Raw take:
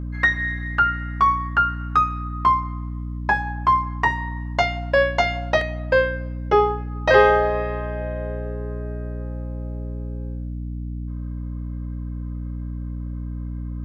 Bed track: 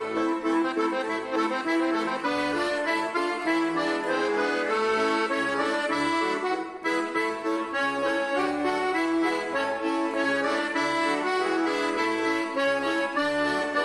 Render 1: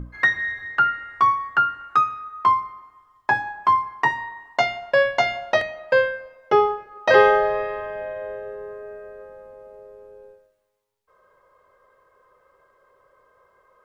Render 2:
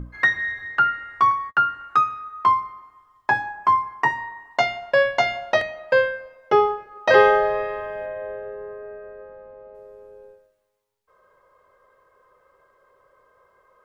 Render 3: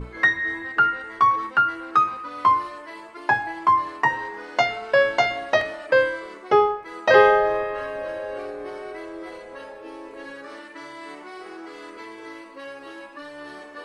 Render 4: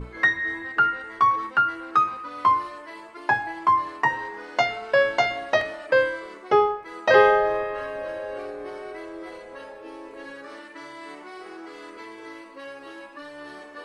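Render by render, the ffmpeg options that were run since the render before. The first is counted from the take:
-af "bandreject=f=60:t=h:w=6,bandreject=f=120:t=h:w=6,bandreject=f=180:t=h:w=6,bandreject=f=240:t=h:w=6,bandreject=f=300:t=h:w=6"
-filter_complex "[0:a]asettb=1/sr,asplit=3[s0][s1][s2];[s0]atrim=end=1.314[s3];[s1]atrim=start=1.31:end=1.71,asetpts=PTS-STARTPTS,afade=t=in:d=0.004:c=qsin,afade=t=out:st=0.396:d=0.004:c=qsin,agate=range=0.0178:threshold=0.0141:ratio=16:release=100:detection=peak[s4];[s2]atrim=start=1.706[s5];[s3][s4]acrossfade=d=0.004:c1=hsin:c2=qsin[s6];[s6][s5]acrossfade=d=0.004:c1=qsin:c2=hsin,asettb=1/sr,asplit=3[s7][s8][s9];[s7]atrim=end=3.464[s10];[s8]atrim=start=3.46:end=4.51,asetpts=PTS-STARTPTS,afade=t=in:d=0.004:c=qsin,afade=t=out:st=1.046:d=0.004:c=qsin,equalizer=f=3700:w=2.7:g=-7.5[s11];[s9]atrim=start=4.506[s12];[s10][s11]acrossfade=d=0.004:c1=hsin:c2=qsin[s13];[s13][s12]acrossfade=d=0.004:c1=qsin:c2=hsin,asettb=1/sr,asplit=3[s14][s15][s16];[s14]atrim=end=8.064[s17];[s15]atrim=start=8.06:end=9.75,asetpts=PTS-STARTPTS,afade=t=in:d=0.004:c=qsin,afade=t=out:st=1.686:d=0.004:c=qsin,lowpass=2900[s18];[s16]atrim=start=9.746[s19];[s17][s18]acrossfade=d=0.004:c1=hsin:c2=qsin[s20];[s20][s19]acrossfade=d=0.004:c1=qsin:c2=hsin"
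-filter_complex "[1:a]volume=0.211[s0];[0:a][s0]amix=inputs=2:normalize=0"
-af "volume=0.841"

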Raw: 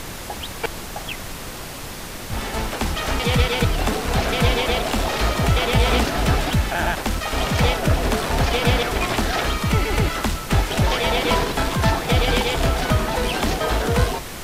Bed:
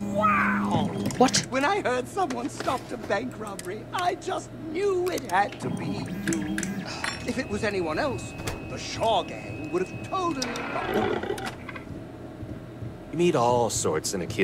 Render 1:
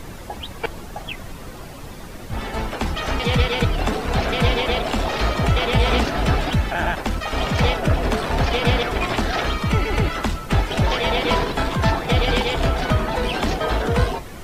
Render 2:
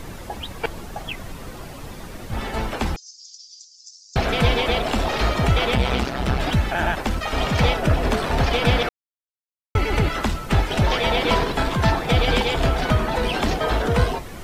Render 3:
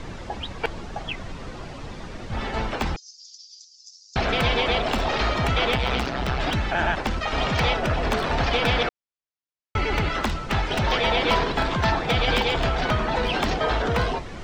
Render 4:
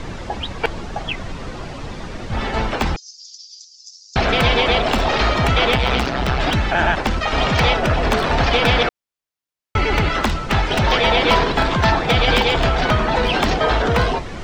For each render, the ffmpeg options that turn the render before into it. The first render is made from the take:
-af "afftdn=nr=10:nf=-33"
-filter_complex "[0:a]asettb=1/sr,asplit=3[s0][s1][s2];[s0]atrim=end=2.964[s3];[s1]atrim=start=2.96:end=4.16,asetpts=PTS-STARTPTS,afade=t=in:d=0.004:c=qsin,afade=t=out:st=1.196:d=0.004:c=qsin,asuperpass=centerf=5900:order=8:qfactor=2.5[s4];[s2]atrim=start=4.156[s5];[s3][s4]acrossfade=d=0.004:c1=hsin:c2=qsin[s6];[s6][s5]acrossfade=d=0.004:c1=qsin:c2=hsin,asettb=1/sr,asplit=3[s7][s8][s9];[s7]atrim=end=5.754[s10];[s8]atrim=start=5.75:end=6.4,asetpts=PTS-STARTPTS,afade=t=in:d=0.004:c=qsin,afade=t=out:st=0.646:d=0.004:c=qsin,tremolo=f=130:d=0.857[s11];[s9]atrim=start=6.396[s12];[s10][s11]acrossfade=d=0.004:c1=hsin:c2=qsin[s13];[s13][s12]acrossfade=d=0.004:c1=qsin:c2=hsin,asplit=3[s14][s15][s16];[s14]atrim=end=8.89,asetpts=PTS-STARTPTS,afade=t=out:st=8.886:d=0.004:c=hsin[s17];[s15]atrim=start=8.89:end=9.75,asetpts=PTS-STARTPTS,volume=0[s18];[s16]atrim=start=9.75,asetpts=PTS-STARTPTS,afade=t=in:d=0.004:c=hsin[s19];[s17][s18][s19]concat=n=3:v=0:a=1"
-filter_complex "[0:a]acrossover=split=620|7000[s0][s1][s2];[s0]asoftclip=type=tanh:threshold=0.0891[s3];[s2]acrusher=bits=5:mix=0:aa=0.000001[s4];[s3][s1][s4]amix=inputs=3:normalize=0"
-af "volume=2"

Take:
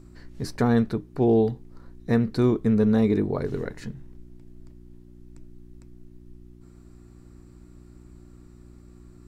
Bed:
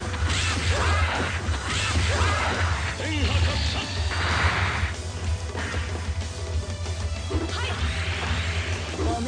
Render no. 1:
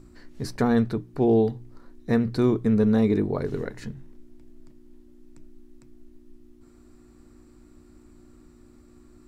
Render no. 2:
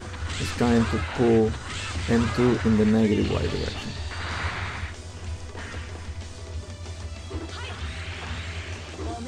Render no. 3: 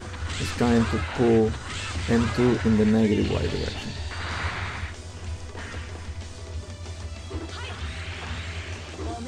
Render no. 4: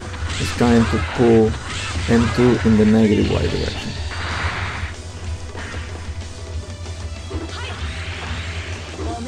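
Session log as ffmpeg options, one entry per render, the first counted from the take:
-af "bandreject=f=60:t=h:w=4,bandreject=f=120:t=h:w=4,bandreject=f=180:t=h:w=4"
-filter_complex "[1:a]volume=0.447[s0];[0:a][s0]amix=inputs=2:normalize=0"
-filter_complex "[0:a]asettb=1/sr,asplit=3[s0][s1][s2];[s0]atrim=end=2.324[s3];[s1]atrim=start=2.32:end=4.11,asetpts=PTS-STARTPTS,afade=t=in:d=0.004:c=qsin,afade=t=out:st=1.786:d=0.004:c=qsin,bandreject=f=1200:w=9.4[s4];[s2]atrim=start=4.106[s5];[s3][s4]acrossfade=d=0.004:c1=hsin:c2=qsin[s6];[s6][s5]acrossfade=d=0.004:c1=qsin:c2=hsin"
-af "volume=2.11"

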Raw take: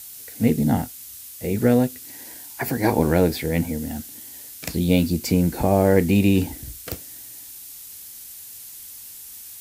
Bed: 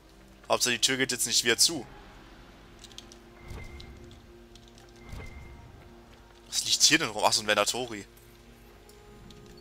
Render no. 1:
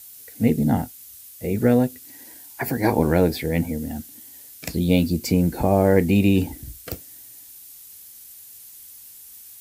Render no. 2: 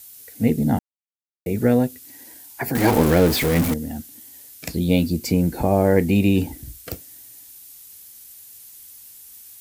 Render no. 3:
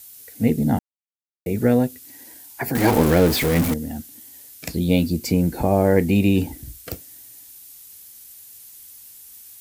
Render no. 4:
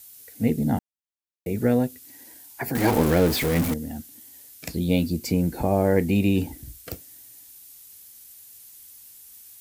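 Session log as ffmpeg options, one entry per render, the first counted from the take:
-af "afftdn=nr=6:nf=-40"
-filter_complex "[0:a]asettb=1/sr,asplit=3[s0][s1][s2];[s0]atrim=end=2.754[s3];[s1]atrim=start=2.75:end=3.74,asetpts=PTS-STARTPTS,afade=t=in:d=0.004:c=qsin,afade=t=out:st=0.986:d=0.004:c=qsin,aeval=exprs='val(0)+0.5*0.112*sgn(val(0))':c=same[s4];[s2]atrim=start=3.736[s5];[s3][s4]acrossfade=d=0.004:c1=hsin:c2=qsin[s6];[s6][s5]acrossfade=d=0.004:c1=qsin:c2=hsin,asplit=3[s7][s8][s9];[s7]atrim=end=0.79,asetpts=PTS-STARTPTS,afade=t=out:st=0.786:d=0.004:c=hsin[s10];[s8]atrim=start=0.79:end=1.46,asetpts=PTS-STARTPTS,volume=0[s11];[s9]atrim=start=1.46,asetpts=PTS-STARTPTS,afade=t=in:d=0.004:c=hsin[s12];[s10][s11][s12]concat=n=3:v=0:a=1"
-af anull
-af "volume=0.668"

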